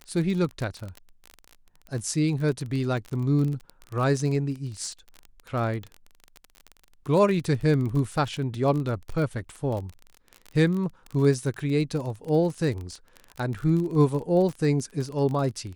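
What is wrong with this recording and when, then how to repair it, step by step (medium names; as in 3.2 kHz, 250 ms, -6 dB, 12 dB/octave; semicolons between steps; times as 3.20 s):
crackle 31 per s -30 dBFS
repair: de-click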